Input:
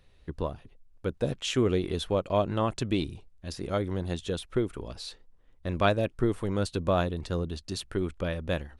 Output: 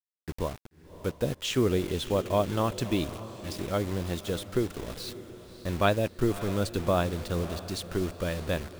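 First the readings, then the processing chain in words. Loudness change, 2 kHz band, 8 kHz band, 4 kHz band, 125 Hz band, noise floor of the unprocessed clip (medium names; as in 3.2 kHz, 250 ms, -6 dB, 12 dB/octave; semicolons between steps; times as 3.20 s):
0.0 dB, +0.5 dB, +3.0 dB, +0.5 dB, 0.0 dB, -59 dBFS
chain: bit crusher 7-bit; echo that smears into a reverb 588 ms, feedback 51%, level -14 dB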